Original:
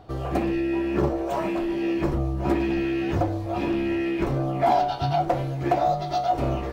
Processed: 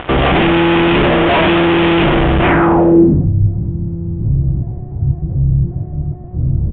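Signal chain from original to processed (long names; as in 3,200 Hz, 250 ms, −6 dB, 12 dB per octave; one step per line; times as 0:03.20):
sub-octave generator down 2 octaves, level −4 dB
low-shelf EQ 120 Hz −10 dB
pitch-shifted copies added −12 semitones −5 dB
fuzz pedal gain 43 dB, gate −47 dBFS
low-pass filter sweep 3,100 Hz → 110 Hz, 0:02.40–0:03.33
downsampling to 8,000 Hz
high-frequency loss of the air 160 metres
level +3 dB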